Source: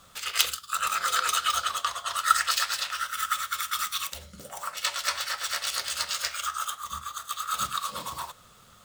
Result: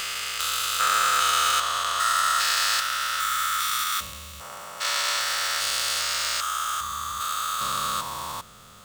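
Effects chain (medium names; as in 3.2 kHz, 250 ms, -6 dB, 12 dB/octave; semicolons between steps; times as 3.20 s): spectrogram pixelated in time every 400 ms; 3.84–5.20 s: three bands expanded up and down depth 70%; trim +8 dB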